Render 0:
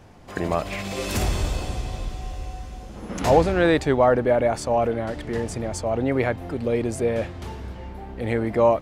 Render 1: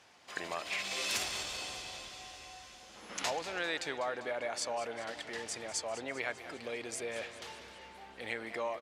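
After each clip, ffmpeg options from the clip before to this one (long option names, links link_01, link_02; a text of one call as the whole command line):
ffmpeg -i in.wav -af "acompressor=threshold=-21dB:ratio=4,bandpass=frequency=4200:width_type=q:width=0.64:csg=0,aecho=1:1:198|396|594|792|990|1188:0.2|0.118|0.0695|0.041|0.0242|0.0143" out.wav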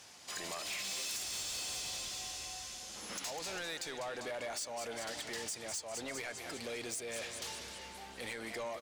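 ffmpeg -i in.wav -af "bass=frequency=250:gain=4,treble=frequency=4000:gain=13,acompressor=threshold=-34dB:ratio=6,asoftclip=type=tanh:threshold=-37dB,volume=1.5dB" out.wav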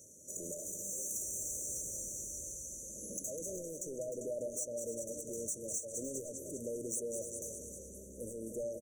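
ffmpeg -i in.wav -filter_complex "[0:a]afftfilt=real='re*(1-between(b*sr/4096,640,5800))':imag='im*(1-between(b*sr/4096,640,5800))':win_size=4096:overlap=0.75,asplit=2[link_01][link_02];[link_02]aecho=0:1:305:0.299[link_03];[link_01][link_03]amix=inputs=2:normalize=0,volume=3dB" out.wav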